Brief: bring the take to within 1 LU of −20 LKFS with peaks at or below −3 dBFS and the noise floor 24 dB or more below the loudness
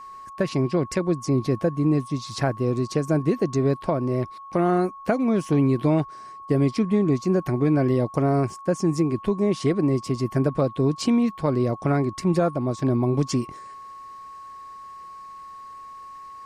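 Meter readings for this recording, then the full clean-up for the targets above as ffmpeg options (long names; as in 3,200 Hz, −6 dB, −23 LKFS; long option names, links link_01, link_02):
interfering tone 1,100 Hz; level of the tone −38 dBFS; integrated loudness −23.5 LKFS; sample peak −10.0 dBFS; target loudness −20.0 LKFS
→ -af "bandreject=frequency=1100:width=30"
-af "volume=3.5dB"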